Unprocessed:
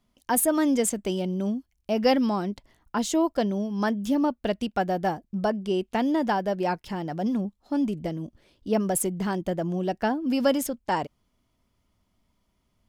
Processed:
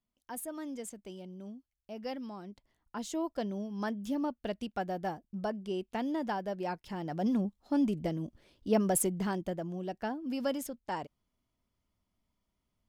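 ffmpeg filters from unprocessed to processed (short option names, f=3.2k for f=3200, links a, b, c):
-af "volume=-3dB,afade=t=in:st=2.35:d=1.2:silence=0.375837,afade=t=in:st=6.82:d=0.51:silence=0.473151,afade=t=out:st=9:d=0.69:silence=0.421697"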